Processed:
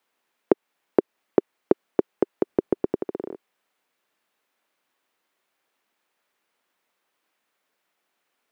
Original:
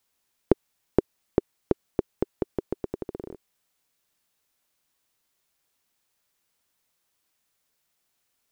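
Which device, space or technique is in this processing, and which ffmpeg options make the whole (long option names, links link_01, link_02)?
DJ mixer with the lows and highs turned down: -filter_complex "[0:a]acrossover=split=210 3000:gain=0.0708 1 0.224[link_01][link_02][link_03];[link_01][link_02][link_03]amix=inputs=3:normalize=0,alimiter=limit=-9dB:level=0:latency=1:release=210,asettb=1/sr,asplit=3[link_04][link_05][link_06];[link_04]atrim=end=2.474[link_07];[link_05]atrim=start=2.47:end=2.96,asetpts=PTS-STARTPTS,afade=type=in:duration=0.004:curve=qsin,afade=type=out:start_time=0.486:duration=0.004:curve=qsin,lowshelf=frequency=220:gain=11.5[link_08];[link_06]atrim=start=2.956[link_09];[link_07][link_08]acrossfade=duration=0.004:curve1=hsin:curve2=qsin[link_10];[link_10][link_09]acrossfade=duration=0.004:curve1=qsin:curve2=hsin,volume=6.5dB"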